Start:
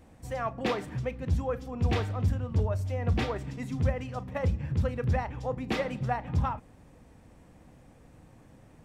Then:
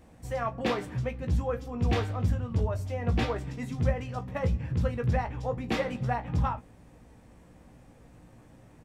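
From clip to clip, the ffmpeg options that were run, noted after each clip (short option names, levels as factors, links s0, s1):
-filter_complex "[0:a]asplit=2[s0][s1];[s1]adelay=17,volume=0.447[s2];[s0][s2]amix=inputs=2:normalize=0"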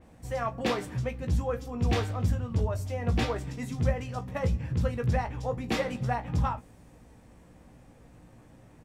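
-af "adynamicequalizer=threshold=0.00251:dfrequency=4400:dqfactor=0.7:tfrequency=4400:tqfactor=0.7:attack=5:release=100:ratio=0.375:range=3:mode=boostabove:tftype=highshelf"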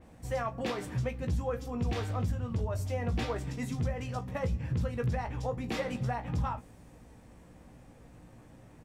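-af "alimiter=limit=0.0708:level=0:latency=1:release=164"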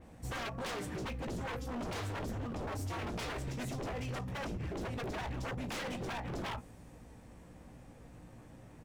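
-af "aeval=exprs='0.02*(abs(mod(val(0)/0.02+3,4)-2)-1)':c=same"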